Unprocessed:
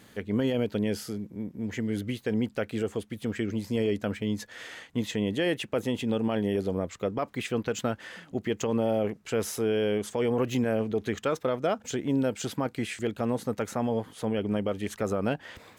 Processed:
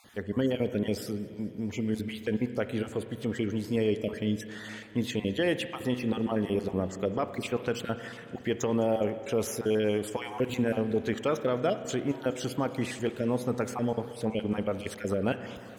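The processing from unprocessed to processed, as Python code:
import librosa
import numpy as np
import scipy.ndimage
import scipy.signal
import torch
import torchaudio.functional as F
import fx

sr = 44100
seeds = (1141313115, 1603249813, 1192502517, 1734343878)

y = fx.spec_dropout(x, sr, seeds[0], share_pct=25)
y = fx.rev_spring(y, sr, rt60_s=2.2, pass_ms=(32, 56), chirp_ms=45, drr_db=10.5)
y = fx.echo_warbled(y, sr, ms=210, feedback_pct=75, rate_hz=2.8, cents=63, wet_db=-23.0)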